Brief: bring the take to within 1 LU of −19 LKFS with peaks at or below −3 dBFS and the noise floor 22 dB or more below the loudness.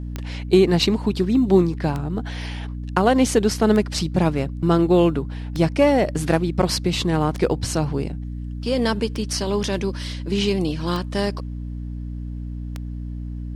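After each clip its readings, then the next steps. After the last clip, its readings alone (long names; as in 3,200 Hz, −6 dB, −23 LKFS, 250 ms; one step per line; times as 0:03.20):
number of clicks 8; mains hum 60 Hz; hum harmonics up to 300 Hz; level of the hum −27 dBFS; integrated loudness −21.0 LKFS; sample peak −3.5 dBFS; target loudness −19.0 LKFS
→ click removal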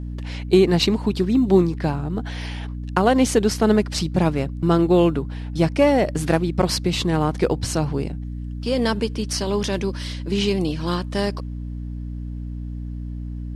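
number of clicks 0; mains hum 60 Hz; hum harmonics up to 300 Hz; level of the hum −27 dBFS
→ hum removal 60 Hz, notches 5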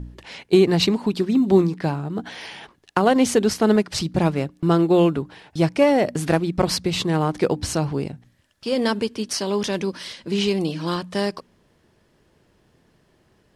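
mains hum none found; integrated loudness −21.0 LKFS; sample peak −3.0 dBFS; target loudness −19.0 LKFS
→ level +2 dB
brickwall limiter −3 dBFS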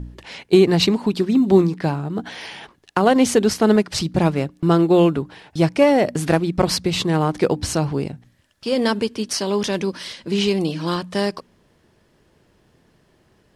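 integrated loudness −19.0 LKFS; sample peak −3.0 dBFS; background noise floor −60 dBFS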